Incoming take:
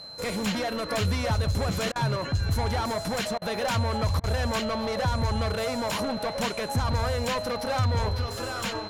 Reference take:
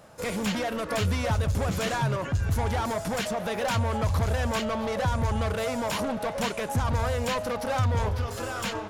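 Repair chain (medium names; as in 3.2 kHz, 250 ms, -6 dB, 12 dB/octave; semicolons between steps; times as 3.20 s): de-click; band-stop 4.1 kHz, Q 30; interpolate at 1.92/3.38/4.20 s, 36 ms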